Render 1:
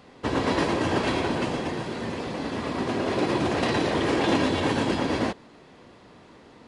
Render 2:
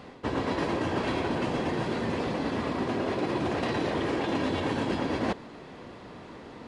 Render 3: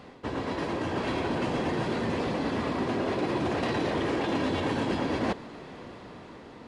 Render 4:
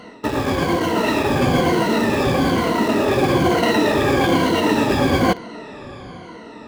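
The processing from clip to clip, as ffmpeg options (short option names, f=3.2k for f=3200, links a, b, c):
-af "areverse,acompressor=threshold=-32dB:ratio=6,areverse,highshelf=f=4.2k:g=-6.5,volume=6dB"
-filter_complex "[0:a]dynaudnorm=f=230:g=9:m=4dB,asplit=2[a][b];[b]asoftclip=type=tanh:threshold=-29.5dB,volume=-7dB[c];[a][c]amix=inputs=2:normalize=0,volume=-5dB"
-filter_complex "[0:a]afftfilt=real='re*pow(10,16/40*sin(2*PI*(1.9*log(max(b,1)*sr/1024/100)/log(2)-(-1.1)*(pts-256)/sr)))':imag='im*pow(10,16/40*sin(2*PI*(1.9*log(max(b,1)*sr/1024/100)/log(2)-(-1.1)*(pts-256)/sr)))':win_size=1024:overlap=0.75,asplit=2[a][b];[b]acrusher=bits=4:mix=0:aa=0.000001,volume=-10dB[c];[a][c]amix=inputs=2:normalize=0,volume=6.5dB"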